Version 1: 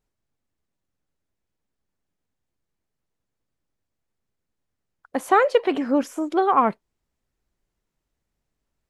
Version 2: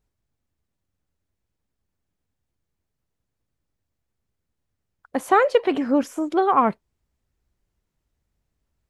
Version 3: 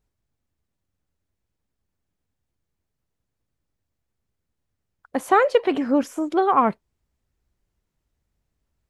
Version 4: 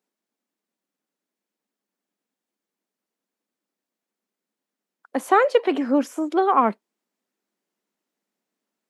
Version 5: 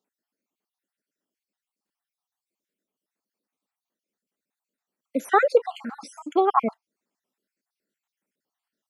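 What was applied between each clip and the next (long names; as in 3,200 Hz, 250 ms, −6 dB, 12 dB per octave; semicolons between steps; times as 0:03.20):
parametric band 71 Hz +8.5 dB 1.9 octaves
no processing that can be heard
Butterworth high-pass 200 Hz 48 dB per octave
time-frequency cells dropped at random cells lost 53%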